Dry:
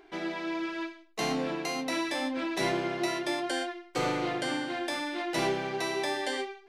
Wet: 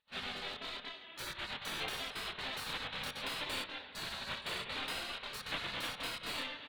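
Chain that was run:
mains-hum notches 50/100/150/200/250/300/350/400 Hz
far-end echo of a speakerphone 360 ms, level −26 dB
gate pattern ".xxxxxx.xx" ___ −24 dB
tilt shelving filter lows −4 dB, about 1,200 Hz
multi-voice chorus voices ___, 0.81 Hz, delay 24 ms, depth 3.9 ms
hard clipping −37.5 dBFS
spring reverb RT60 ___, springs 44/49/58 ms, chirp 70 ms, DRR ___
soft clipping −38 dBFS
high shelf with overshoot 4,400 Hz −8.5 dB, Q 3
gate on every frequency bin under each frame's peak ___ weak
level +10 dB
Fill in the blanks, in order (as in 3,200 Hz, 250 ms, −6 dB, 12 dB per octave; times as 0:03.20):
195 BPM, 2, 2.3 s, 9.5 dB, −15 dB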